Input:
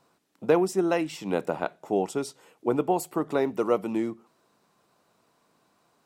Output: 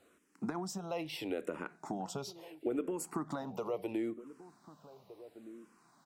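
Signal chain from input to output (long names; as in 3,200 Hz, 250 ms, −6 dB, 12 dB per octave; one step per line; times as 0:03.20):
brickwall limiter −19 dBFS, peak gain reduction 9 dB
downward compressor 4 to 1, threshold −34 dBFS, peak gain reduction 9.5 dB
slap from a distant wall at 260 metres, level −16 dB
frequency shifter mixed with the dry sound −0.74 Hz
level +3 dB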